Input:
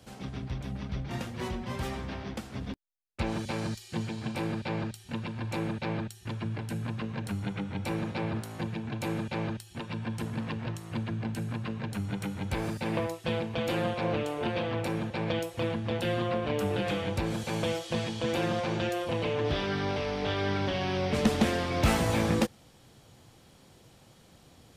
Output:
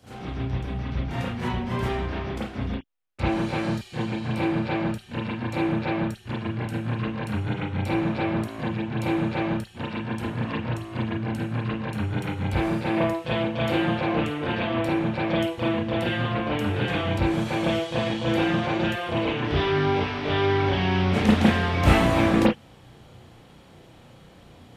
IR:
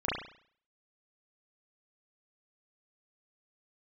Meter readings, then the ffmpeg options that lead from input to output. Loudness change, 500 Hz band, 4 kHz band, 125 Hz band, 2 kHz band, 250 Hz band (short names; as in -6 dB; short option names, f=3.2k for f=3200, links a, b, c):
+6.5 dB, +5.0 dB, +5.0 dB, +6.5 dB, +7.5 dB, +7.5 dB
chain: -filter_complex "[1:a]atrim=start_sample=2205,afade=t=out:st=0.14:d=0.01,atrim=end_sample=6615[a];[0:a][a]afir=irnorm=-1:irlink=0,volume=-1dB"